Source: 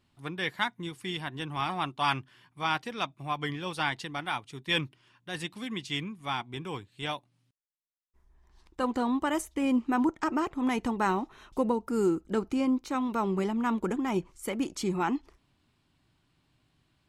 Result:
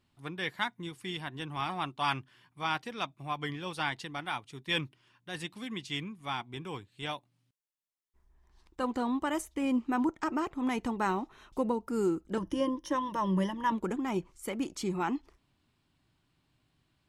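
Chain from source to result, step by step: 12.37–13.72 ripple EQ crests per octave 1.2, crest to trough 17 dB; gain -3 dB

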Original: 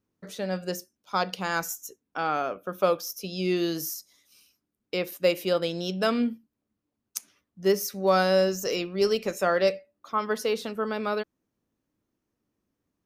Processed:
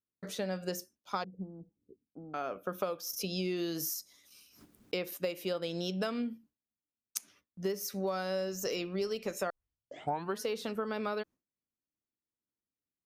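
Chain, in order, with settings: gate with hold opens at -53 dBFS; compressor 10:1, threshold -31 dBFS, peak gain reduction 15 dB; 1.24–2.34 inverse Chebyshev low-pass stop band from 2100 Hz, stop band 80 dB; 3.13–5.14 backwards sustainer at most 77 dB/s; 9.5 tape start 0.90 s

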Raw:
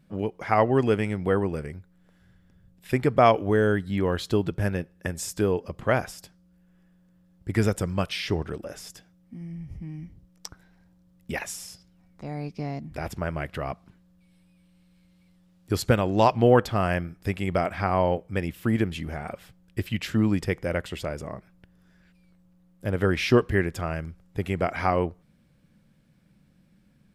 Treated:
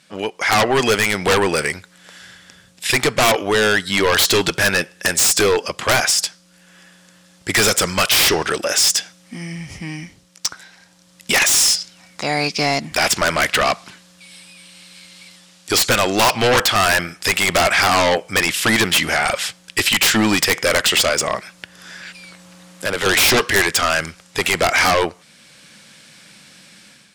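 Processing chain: weighting filter ITU-R 468; AGC gain up to 9.5 dB; in parallel at -9 dB: sine folder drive 19 dB, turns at -1 dBFS; 21.35–23.06 on the sum: three-band squash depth 40%; gain -3 dB

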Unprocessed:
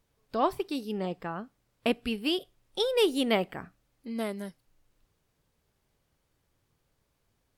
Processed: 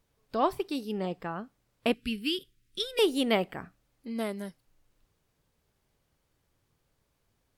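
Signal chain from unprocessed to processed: 1.94–2.99 Butterworth band-stop 740 Hz, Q 0.55

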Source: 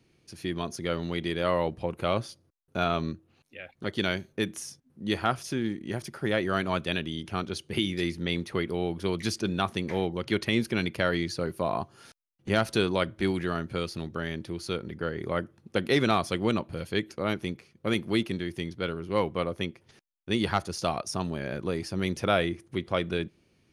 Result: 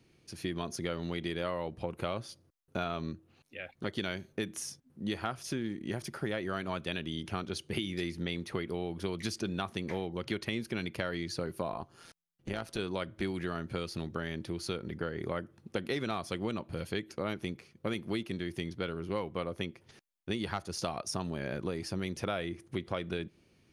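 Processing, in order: compressor, threshold -31 dBFS, peak gain reduction 11.5 dB; 11.72–12.79 AM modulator 170 Hz, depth 45%

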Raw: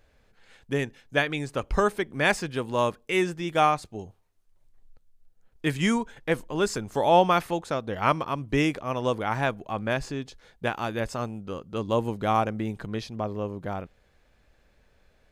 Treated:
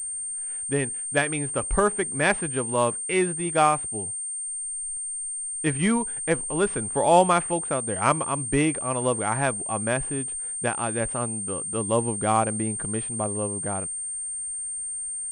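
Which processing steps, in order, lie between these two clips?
median filter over 9 samples; pulse-width modulation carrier 8700 Hz; gain +1.5 dB

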